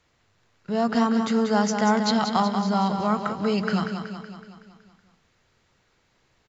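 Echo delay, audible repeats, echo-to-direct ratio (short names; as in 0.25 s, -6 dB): 0.187 s, 6, -5.5 dB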